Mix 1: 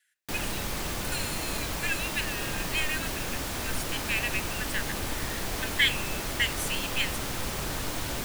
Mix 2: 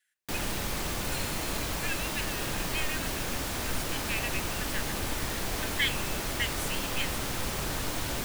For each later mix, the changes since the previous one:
speech −5.0 dB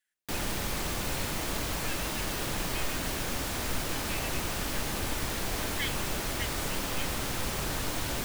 speech −7.0 dB

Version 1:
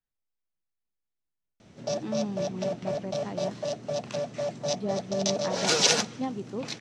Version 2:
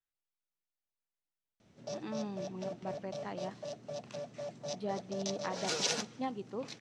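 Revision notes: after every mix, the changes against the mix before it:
speech: add low-shelf EQ 380 Hz −10.5 dB
background −11.0 dB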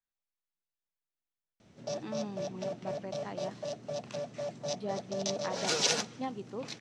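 background +4.5 dB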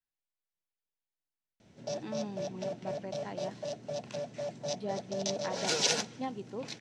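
master: add notch filter 1,200 Hz, Q 7.5

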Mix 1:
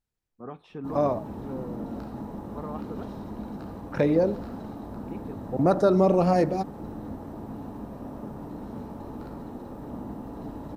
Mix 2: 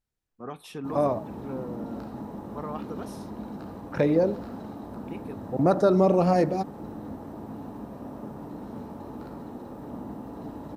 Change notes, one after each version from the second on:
first voice: remove head-to-tape spacing loss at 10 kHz 31 dB
background: add high-pass filter 99 Hz 6 dB per octave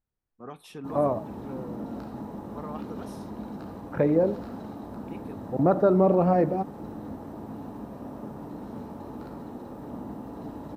first voice −3.5 dB
second voice: add low-pass filter 1,700 Hz 12 dB per octave

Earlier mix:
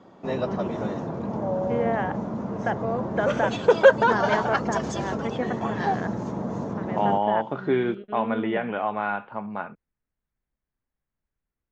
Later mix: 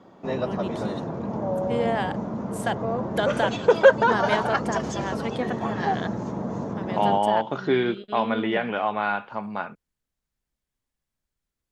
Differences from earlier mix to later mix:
first voice: remove low-pass filter 2,200 Hz 24 dB per octave
second voice: remove high-frequency loss of the air 390 metres

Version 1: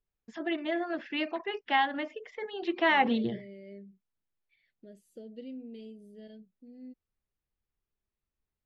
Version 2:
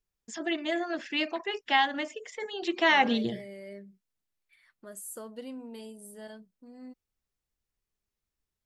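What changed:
second voice: remove Butterworth band-reject 1,100 Hz, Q 0.56
master: remove high-frequency loss of the air 280 metres

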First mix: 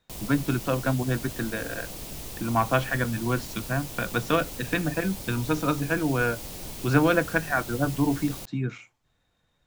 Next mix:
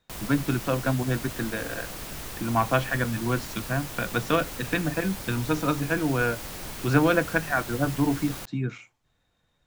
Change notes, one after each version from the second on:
background: add parametric band 1,500 Hz +10.5 dB 1.2 octaves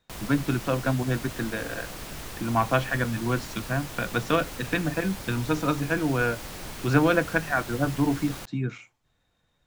background: add high-shelf EQ 9,700 Hz −5.5 dB

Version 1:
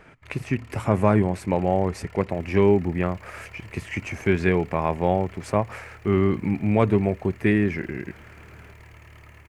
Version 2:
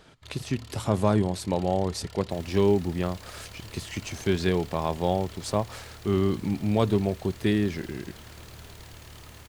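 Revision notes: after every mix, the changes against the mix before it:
speech −3.5 dB
second sound +7.0 dB
master: add high shelf with overshoot 2,900 Hz +8 dB, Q 3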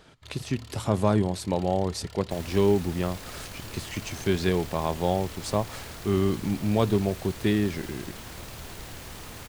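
second sound +8.5 dB

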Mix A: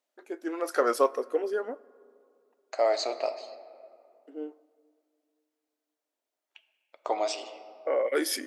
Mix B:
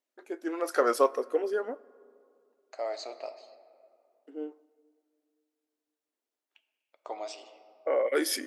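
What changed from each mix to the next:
second voice −9.5 dB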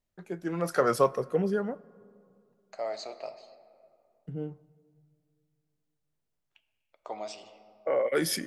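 master: remove linear-phase brick-wall high-pass 240 Hz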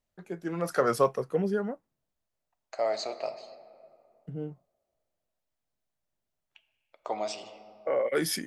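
first voice: send off
second voice +5.5 dB

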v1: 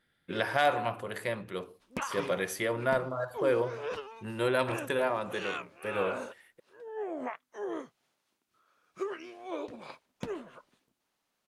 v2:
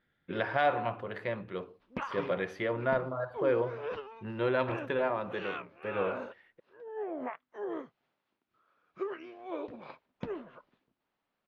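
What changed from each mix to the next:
master: add high-frequency loss of the air 290 metres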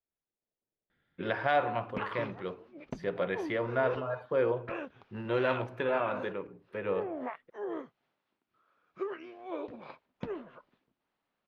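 first voice: entry +0.90 s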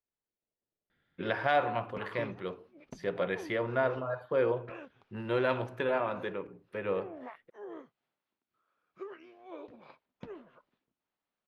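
background −7.5 dB
master: add high-shelf EQ 7,300 Hz +10 dB

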